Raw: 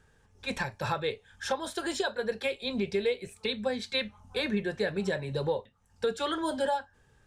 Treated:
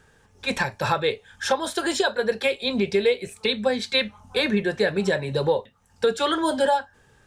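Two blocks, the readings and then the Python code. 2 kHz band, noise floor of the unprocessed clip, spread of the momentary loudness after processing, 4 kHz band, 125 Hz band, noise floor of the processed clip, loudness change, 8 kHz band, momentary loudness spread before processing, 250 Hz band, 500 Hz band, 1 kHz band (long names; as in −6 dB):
+8.5 dB, −65 dBFS, 4 LU, +8.5 dB, +6.0 dB, −59 dBFS, +8.0 dB, +8.5 dB, 4 LU, +7.0 dB, +8.0 dB, +8.5 dB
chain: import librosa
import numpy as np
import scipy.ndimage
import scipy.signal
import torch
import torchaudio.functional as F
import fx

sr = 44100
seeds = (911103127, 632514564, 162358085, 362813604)

y = fx.low_shelf(x, sr, hz=110.0, db=-7.5)
y = y * 10.0 ** (8.5 / 20.0)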